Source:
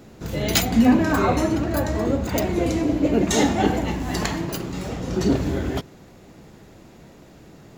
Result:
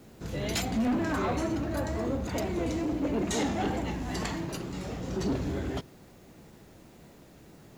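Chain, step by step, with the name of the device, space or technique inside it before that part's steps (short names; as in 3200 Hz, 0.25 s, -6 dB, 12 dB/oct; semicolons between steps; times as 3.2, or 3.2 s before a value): compact cassette (soft clip -17 dBFS, distortion -12 dB; LPF 11000 Hz 12 dB/oct; wow and flutter; white noise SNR 35 dB); gain -6.5 dB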